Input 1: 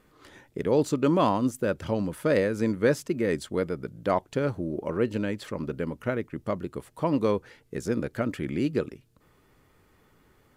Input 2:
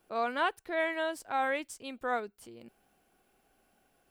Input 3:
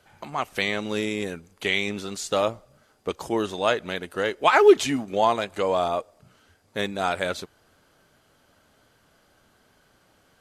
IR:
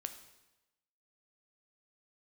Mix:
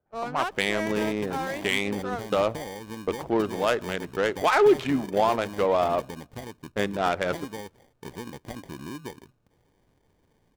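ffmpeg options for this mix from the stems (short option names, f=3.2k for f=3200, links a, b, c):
-filter_complex "[0:a]highshelf=f=4.4k:g=-4,acompressor=threshold=-29dB:ratio=6,acrusher=samples=33:mix=1:aa=0.000001,adelay=300,volume=-5dB[a];[1:a]adynamicsmooth=sensitivity=8:basefreq=630,lowshelf=f=270:g=4.5,volume=-2dB[b];[2:a]adynamicsmooth=sensitivity=1.5:basefreq=840,volume=0dB,asplit=2[c][d];[d]volume=-14.5dB[e];[b][c]amix=inputs=2:normalize=0,agate=range=-23dB:threshold=-40dB:ratio=16:detection=peak,alimiter=limit=-13.5dB:level=0:latency=1:release=50,volume=0dB[f];[3:a]atrim=start_sample=2205[g];[e][g]afir=irnorm=-1:irlink=0[h];[a][f][h]amix=inputs=3:normalize=0"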